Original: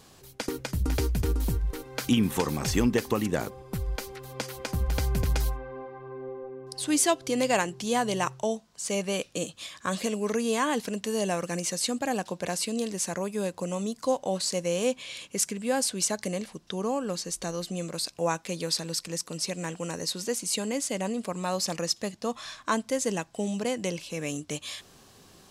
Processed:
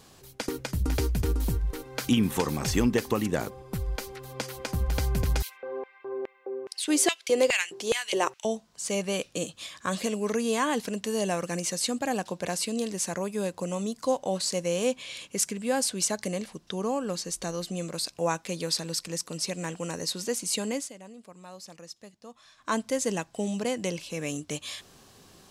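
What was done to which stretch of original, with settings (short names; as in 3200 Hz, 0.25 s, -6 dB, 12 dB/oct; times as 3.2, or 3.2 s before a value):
5.42–8.45 LFO high-pass square 2.4 Hz 400–2300 Hz
20.73–22.76 dip -16 dB, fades 0.20 s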